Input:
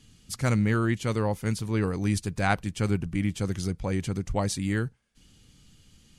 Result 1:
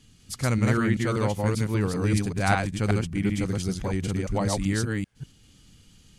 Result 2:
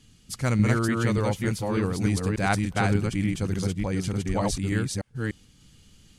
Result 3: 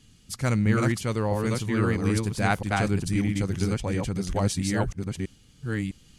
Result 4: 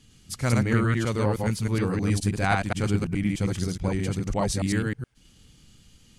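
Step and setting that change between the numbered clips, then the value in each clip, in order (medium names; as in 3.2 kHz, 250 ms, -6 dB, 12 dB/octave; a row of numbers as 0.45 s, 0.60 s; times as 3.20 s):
chunks repeated in reverse, time: 194 ms, 295 ms, 657 ms, 105 ms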